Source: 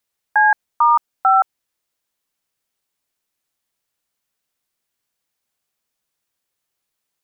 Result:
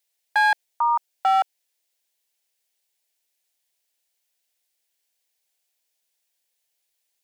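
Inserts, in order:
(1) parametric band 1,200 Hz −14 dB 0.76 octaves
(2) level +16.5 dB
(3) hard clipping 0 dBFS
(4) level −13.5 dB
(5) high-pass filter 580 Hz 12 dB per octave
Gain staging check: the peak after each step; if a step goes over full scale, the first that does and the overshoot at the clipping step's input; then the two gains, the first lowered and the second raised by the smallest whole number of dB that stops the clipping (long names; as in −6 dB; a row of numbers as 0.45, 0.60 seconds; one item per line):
−12.0, +4.5, 0.0, −13.5, −10.5 dBFS
step 2, 4.5 dB
step 2 +11.5 dB, step 4 −8.5 dB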